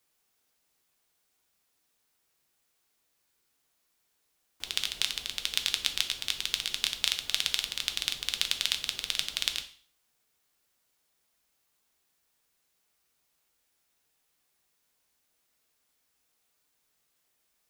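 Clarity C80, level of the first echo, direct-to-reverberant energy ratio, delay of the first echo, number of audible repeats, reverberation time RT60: 16.5 dB, no echo, 6.0 dB, no echo, no echo, 0.50 s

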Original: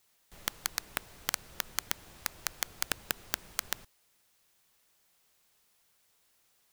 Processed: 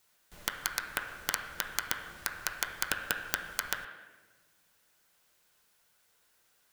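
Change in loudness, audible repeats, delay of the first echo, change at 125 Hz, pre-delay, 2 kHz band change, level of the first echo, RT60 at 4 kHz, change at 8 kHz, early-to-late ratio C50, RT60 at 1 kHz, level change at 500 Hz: +1.5 dB, no echo, no echo, 0.0 dB, 7 ms, +5.0 dB, no echo, 0.95 s, 0.0 dB, 5.5 dB, 1.1 s, +2.0 dB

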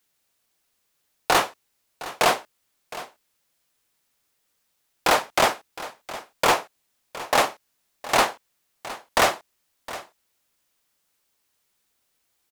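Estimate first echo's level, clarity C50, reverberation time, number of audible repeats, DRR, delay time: -16.0 dB, no reverb, no reverb, 1, no reverb, 713 ms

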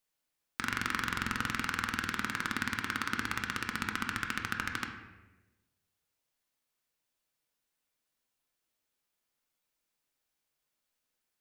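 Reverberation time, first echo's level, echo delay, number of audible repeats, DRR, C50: 1.2 s, no echo, no echo, no echo, 2.5 dB, 6.0 dB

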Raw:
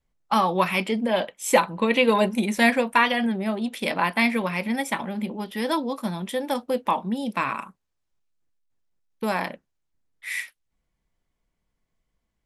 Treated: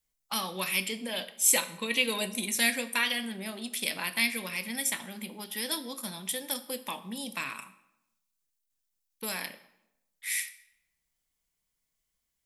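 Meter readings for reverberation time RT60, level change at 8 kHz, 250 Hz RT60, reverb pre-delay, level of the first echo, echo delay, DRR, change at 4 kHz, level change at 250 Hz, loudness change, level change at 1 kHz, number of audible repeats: 0.90 s, +8.0 dB, 0.90 s, 3 ms, no echo, no echo, 10.5 dB, 0.0 dB, -13.0 dB, -6.0 dB, -15.5 dB, no echo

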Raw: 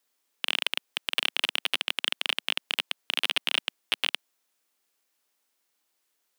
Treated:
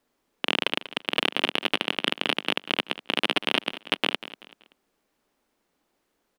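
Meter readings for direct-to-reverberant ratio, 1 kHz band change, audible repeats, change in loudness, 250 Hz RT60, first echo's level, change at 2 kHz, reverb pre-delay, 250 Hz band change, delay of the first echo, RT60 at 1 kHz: no reverb, +8.0 dB, 3, +2.0 dB, no reverb, -15.0 dB, +3.0 dB, no reverb, +16.5 dB, 191 ms, no reverb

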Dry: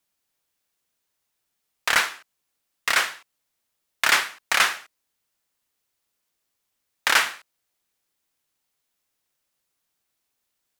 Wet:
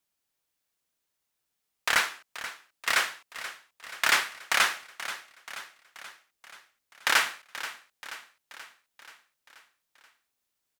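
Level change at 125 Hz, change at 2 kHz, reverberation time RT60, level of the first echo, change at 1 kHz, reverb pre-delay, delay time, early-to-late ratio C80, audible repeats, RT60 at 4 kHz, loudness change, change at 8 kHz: no reading, -3.5 dB, no reverb, -13.5 dB, -3.5 dB, no reverb, 481 ms, no reverb, 5, no reverb, -6.0 dB, -3.5 dB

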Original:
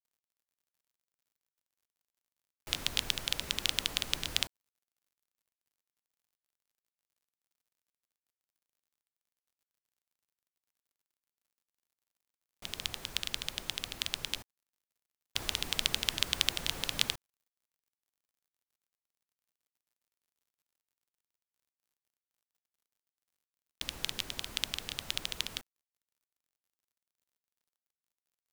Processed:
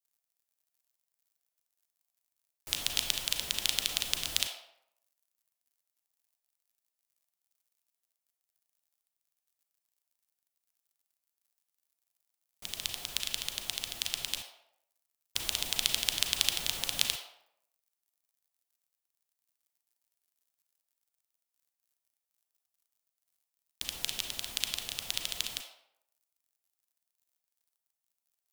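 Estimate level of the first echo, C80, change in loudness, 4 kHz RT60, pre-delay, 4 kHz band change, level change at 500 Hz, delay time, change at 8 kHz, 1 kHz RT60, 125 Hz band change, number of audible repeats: no echo, 7.5 dB, +2.0 dB, 0.50 s, 32 ms, +1.0 dB, -1.5 dB, no echo, +5.0 dB, 0.75 s, -4.0 dB, no echo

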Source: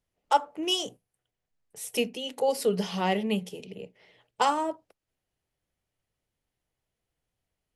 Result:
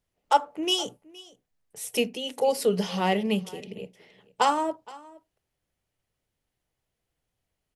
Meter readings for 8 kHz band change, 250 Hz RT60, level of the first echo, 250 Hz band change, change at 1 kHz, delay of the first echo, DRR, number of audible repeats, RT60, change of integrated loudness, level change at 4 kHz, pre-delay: +2.0 dB, no reverb, -21.5 dB, +2.0 dB, +2.0 dB, 468 ms, no reverb, 1, no reverb, +2.0 dB, +2.0 dB, no reverb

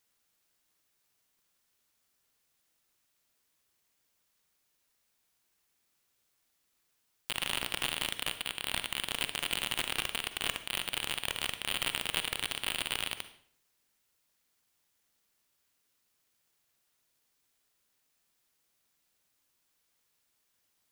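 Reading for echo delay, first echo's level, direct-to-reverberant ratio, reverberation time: no echo, no echo, 10.0 dB, 0.55 s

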